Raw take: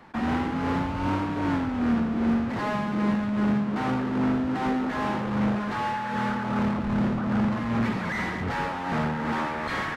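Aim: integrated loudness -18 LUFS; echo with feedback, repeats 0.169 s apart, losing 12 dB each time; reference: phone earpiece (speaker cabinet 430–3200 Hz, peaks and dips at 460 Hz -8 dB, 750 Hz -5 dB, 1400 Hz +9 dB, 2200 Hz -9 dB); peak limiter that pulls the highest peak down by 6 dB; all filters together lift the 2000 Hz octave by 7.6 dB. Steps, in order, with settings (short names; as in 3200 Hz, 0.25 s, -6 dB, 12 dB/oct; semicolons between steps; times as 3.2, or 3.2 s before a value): bell 2000 Hz +8 dB; limiter -21 dBFS; speaker cabinet 430–3200 Hz, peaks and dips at 460 Hz -8 dB, 750 Hz -5 dB, 1400 Hz +9 dB, 2200 Hz -9 dB; feedback echo 0.169 s, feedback 25%, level -12 dB; gain +11.5 dB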